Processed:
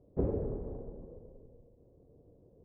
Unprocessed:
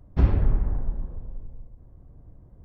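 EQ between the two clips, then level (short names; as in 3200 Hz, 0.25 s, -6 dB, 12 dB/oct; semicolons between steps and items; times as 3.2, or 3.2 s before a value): synth low-pass 470 Hz, resonance Q 3.7; tilt +2 dB/oct; low shelf 74 Hz -10 dB; -3.5 dB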